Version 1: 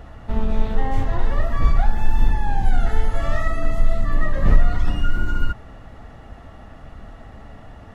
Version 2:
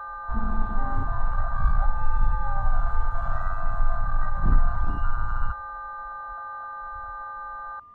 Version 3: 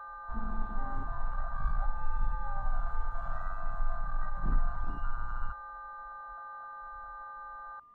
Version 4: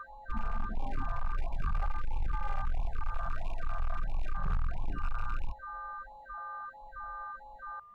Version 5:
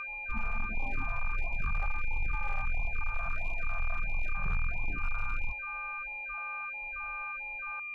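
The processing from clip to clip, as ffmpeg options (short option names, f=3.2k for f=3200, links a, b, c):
-af "aeval=exprs='val(0)+0.0631*sin(2*PI*1200*n/s)':c=same,afwtdn=0.126,volume=-5.5dB"
-af "equalizer=f=82:t=o:w=0.75:g=-9.5,volume=-8.5dB"
-af "asoftclip=type=hard:threshold=-28.5dB,afftfilt=real='re*(1-between(b*sr/1024,260*pow(1600/260,0.5+0.5*sin(2*PI*1.5*pts/sr))/1.41,260*pow(1600/260,0.5+0.5*sin(2*PI*1.5*pts/sr))*1.41))':imag='im*(1-between(b*sr/1024,260*pow(1600/260,0.5+0.5*sin(2*PI*1.5*pts/sr))/1.41,260*pow(1600/260,0.5+0.5*sin(2*PI*1.5*pts/sr))*1.41))':win_size=1024:overlap=0.75,volume=3dB"
-af "aeval=exprs='val(0)+0.0158*sin(2*PI*2400*n/s)':c=same,volume=-1dB"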